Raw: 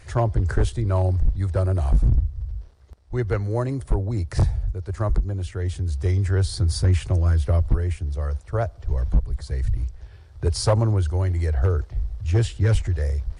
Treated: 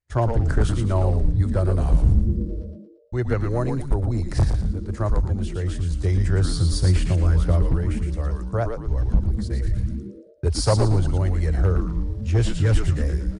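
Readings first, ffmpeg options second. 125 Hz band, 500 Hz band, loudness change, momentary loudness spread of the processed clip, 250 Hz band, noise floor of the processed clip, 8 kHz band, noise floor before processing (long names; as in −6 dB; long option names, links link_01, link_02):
+0.5 dB, +1.0 dB, +1.0 dB, 8 LU, +4.5 dB, −42 dBFS, +1.5 dB, −46 dBFS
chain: -filter_complex "[0:a]agate=range=-41dB:threshold=-33dB:ratio=16:detection=peak,asplit=6[link_01][link_02][link_03][link_04][link_05][link_06];[link_02]adelay=114,afreqshift=-130,volume=-5dB[link_07];[link_03]adelay=228,afreqshift=-260,volume=-13dB[link_08];[link_04]adelay=342,afreqshift=-390,volume=-20.9dB[link_09];[link_05]adelay=456,afreqshift=-520,volume=-28.9dB[link_10];[link_06]adelay=570,afreqshift=-650,volume=-36.8dB[link_11];[link_01][link_07][link_08][link_09][link_10][link_11]amix=inputs=6:normalize=0"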